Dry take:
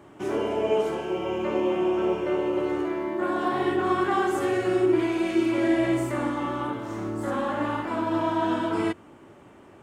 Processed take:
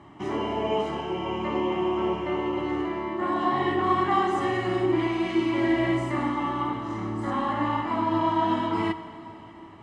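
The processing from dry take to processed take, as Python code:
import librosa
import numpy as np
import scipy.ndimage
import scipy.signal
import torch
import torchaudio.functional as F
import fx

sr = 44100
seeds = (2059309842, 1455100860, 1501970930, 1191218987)

y = scipy.signal.sosfilt(scipy.signal.butter(2, 5100.0, 'lowpass', fs=sr, output='sos'), x)
y = y + 0.59 * np.pad(y, (int(1.0 * sr / 1000.0), 0))[:len(y)]
y = fx.rev_plate(y, sr, seeds[0], rt60_s=4.0, hf_ratio=1.0, predelay_ms=0, drr_db=12.0)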